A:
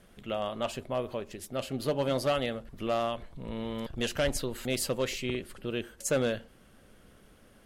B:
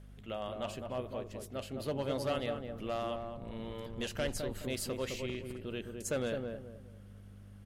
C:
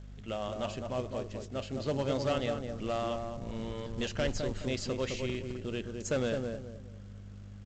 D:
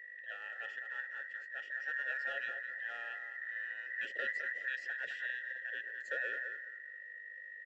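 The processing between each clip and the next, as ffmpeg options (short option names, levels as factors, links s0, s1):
-filter_complex "[0:a]aeval=exprs='val(0)+0.00631*(sin(2*PI*50*n/s)+sin(2*PI*2*50*n/s)/2+sin(2*PI*3*50*n/s)/3+sin(2*PI*4*50*n/s)/4+sin(2*PI*5*50*n/s)/5)':c=same,asplit=2[s0][s1];[s1]adelay=210,lowpass=f=920:p=1,volume=0.668,asplit=2[s2][s3];[s3]adelay=210,lowpass=f=920:p=1,volume=0.35,asplit=2[s4][s5];[s5]adelay=210,lowpass=f=920:p=1,volume=0.35,asplit=2[s6][s7];[s7]adelay=210,lowpass=f=920:p=1,volume=0.35,asplit=2[s8][s9];[s9]adelay=210,lowpass=f=920:p=1,volume=0.35[s10];[s0][s2][s4][s6][s8][s10]amix=inputs=6:normalize=0,volume=0.447"
-af "aresample=16000,acrusher=bits=5:mode=log:mix=0:aa=0.000001,aresample=44100,lowshelf=f=230:g=3.5,volume=1.33"
-filter_complex "[0:a]afftfilt=real='real(if(between(b,1,1012),(2*floor((b-1)/92)+1)*92-b,b),0)':imag='imag(if(between(b,1,1012),(2*floor((b-1)/92)+1)*92-b,b),0)*if(between(b,1,1012),-1,1)':win_size=2048:overlap=0.75,asplit=3[s0][s1][s2];[s0]bandpass=f=530:t=q:w=8,volume=1[s3];[s1]bandpass=f=1840:t=q:w=8,volume=0.501[s4];[s2]bandpass=f=2480:t=q:w=8,volume=0.355[s5];[s3][s4][s5]amix=inputs=3:normalize=0,volume=1.58"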